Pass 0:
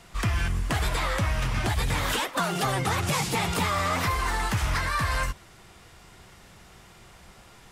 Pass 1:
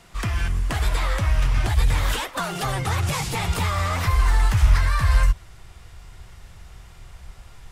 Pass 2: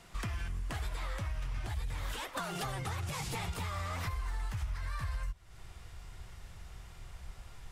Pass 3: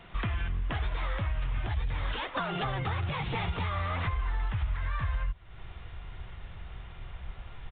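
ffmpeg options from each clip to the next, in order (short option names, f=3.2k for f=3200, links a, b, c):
-af "asubboost=boost=7:cutoff=87"
-af "acompressor=threshold=-29dB:ratio=6,volume=-5.5dB"
-af "aresample=8000,aresample=44100,volume=6dB"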